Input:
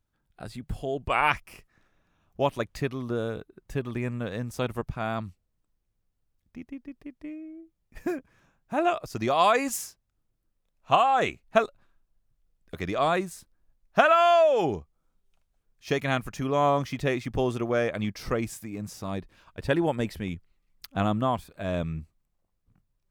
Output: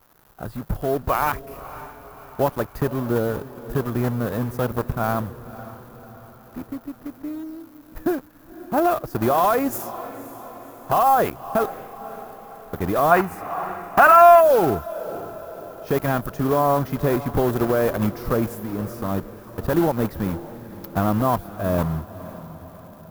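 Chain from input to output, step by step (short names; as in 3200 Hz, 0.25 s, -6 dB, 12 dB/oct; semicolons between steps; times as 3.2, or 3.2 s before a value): block floating point 3-bit; crackle 420/s -43 dBFS; band shelf 4300 Hz -13.5 dB 2.6 oct; limiter -17.5 dBFS, peak gain reduction 11 dB; on a send: diffused feedback echo 0.543 s, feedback 54%, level -15 dB; on the sum: spectral gain 13.11–14.41, 670–3000 Hz +9 dB; gain +7.5 dB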